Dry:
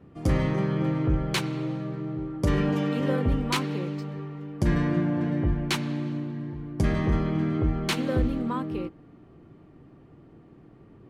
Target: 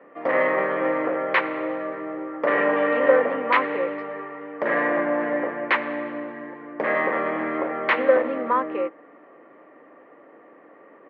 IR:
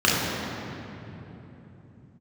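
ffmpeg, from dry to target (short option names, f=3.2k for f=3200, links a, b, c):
-af "aresample=16000,asoftclip=type=hard:threshold=-20.5dB,aresample=44100,highpass=f=340:w=0.5412,highpass=f=340:w=1.3066,equalizer=f=370:t=q:w=4:g=-8,equalizer=f=550:t=q:w=4:g=10,equalizer=f=1.1k:t=q:w=4:g=6,equalizer=f=1.9k:t=q:w=4:g=10,lowpass=f=2.4k:w=0.5412,lowpass=f=2.4k:w=1.3066,volume=7.5dB"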